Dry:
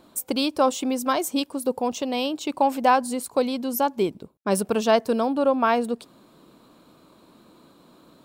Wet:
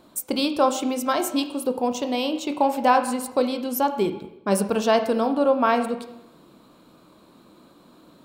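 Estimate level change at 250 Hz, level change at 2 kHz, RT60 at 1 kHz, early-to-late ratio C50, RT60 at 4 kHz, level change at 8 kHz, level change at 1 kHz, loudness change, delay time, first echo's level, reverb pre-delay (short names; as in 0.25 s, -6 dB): +1.0 dB, +0.5 dB, 0.85 s, 10.5 dB, 0.80 s, 0.0 dB, +0.5 dB, +0.5 dB, none, none, 17 ms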